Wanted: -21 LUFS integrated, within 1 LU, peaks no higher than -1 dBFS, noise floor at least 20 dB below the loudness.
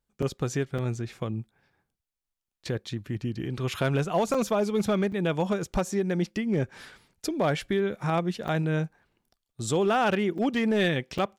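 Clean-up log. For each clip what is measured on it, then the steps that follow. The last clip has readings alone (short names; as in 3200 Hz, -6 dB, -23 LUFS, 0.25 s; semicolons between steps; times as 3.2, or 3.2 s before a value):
clipped 0.4%; flat tops at -17.5 dBFS; dropouts 7; longest dropout 5.2 ms; loudness -28.0 LUFS; peak -17.5 dBFS; loudness target -21.0 LUFS
-> clip repair -17.5 dBFS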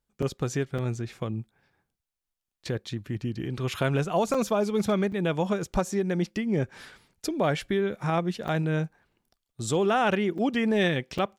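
clipped 0.0%; dropouts 7; longest dropout 5.2 ms
-> interpolate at 0.22/0.78/4.34/5.12/8.48/10.38/11.18, 5.2 ms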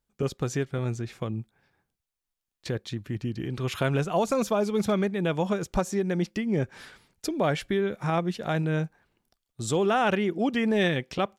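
dropouts 0; loudness -28.0 LUFS; peak -12.0 dBFS; loudness target -21.0 LUFS
-> gain +7 dB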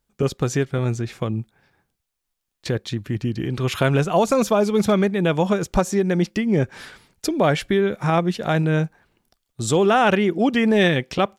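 loudness -21.0 LUFS; peak -5.0 dBFS; noise floor -79 dBFS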